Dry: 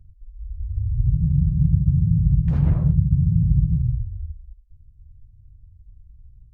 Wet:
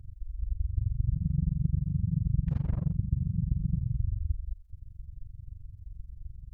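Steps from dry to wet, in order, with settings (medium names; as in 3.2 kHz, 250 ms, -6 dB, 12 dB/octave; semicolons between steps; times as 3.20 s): reverse; compression, threshold -31 dBFS, peak gain reduction 18 dB; reverse; AM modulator 23 Hz, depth 95%; trim +8.5 dB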